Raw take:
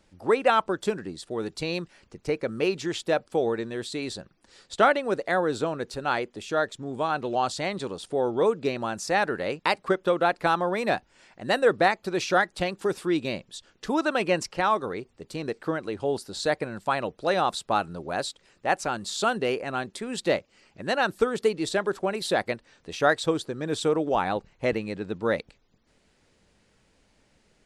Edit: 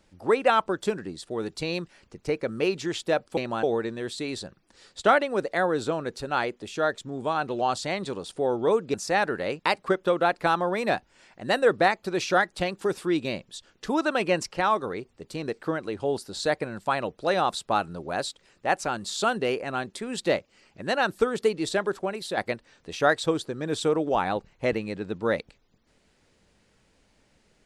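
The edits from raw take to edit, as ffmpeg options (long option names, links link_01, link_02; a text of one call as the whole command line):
ffmpeg -i in.wav -filter_complex "[0:a]asplit=5[link_01][link_02][link_03][link_04][link_05];[link_01]atrim=end=3.372[link_06];[link_02]atrim=start=8.678:end=8.942[link_07];[link_03]atrim=start=3.368:end=8.682[link_08];[link_04]atrim=start=8.938:end=22.37,asetpts=PTS-STARTPTS,afade=type=out:start_time=12.902:duration=0.53:silence=0.446684[link_09];[link_05]atrim=start=22.37,asetpts=PTS-STARTPTS,afade=type=in:duration=0.004:curve=hsin:silence=0.446684[link_10];[link_06][link_07]acrossfade=duration=0.004:curve1=hsin:curve2=hsin[link_11];[link_11][link_08]acrossfade=duration=0.004:curve1=hsin:curve2=hsin[link_12];[link_09][link_10]concat=n=2:v=0:a=1[link_13];[link_12][link_13]acrossfade=duration=0.004:curve1=hsin:curve2=hsin" out.wav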